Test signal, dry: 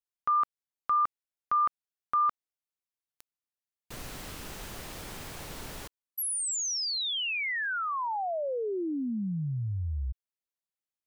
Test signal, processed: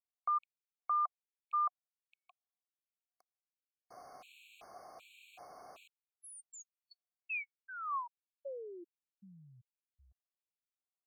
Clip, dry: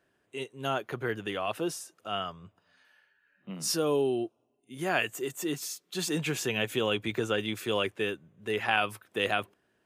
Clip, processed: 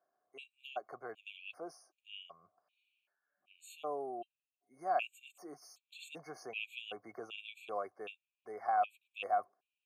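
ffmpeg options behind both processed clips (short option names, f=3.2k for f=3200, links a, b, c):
-filter_complex "[0:a]asplit=3[a][b][c];[a]bandpass=f=730:t=q:w=8,volume=0dB[d];[b]bandpass=f=1.09k:t=q:w=8,volume=-6dB[e];[c]bandpass=f=2.44k:t=q:w=8,volume=-9dB[f];[d][e][f]amix=inputs=3:normalize=0,aemphasis=mode=production:type=50kf,afftfilt=real='re*gt(sin(2*PI*1.3*pts/sr)*(1-2*mod(floor(b*sr/1024/2200),2)),0)':imag='im*gt(sin(2*PI*1.3*pts/sr)*(1-2*mod(floor(b*sr/1024/2200),2)),0)':win_size=1024:overlap=0.75,volume=2dB"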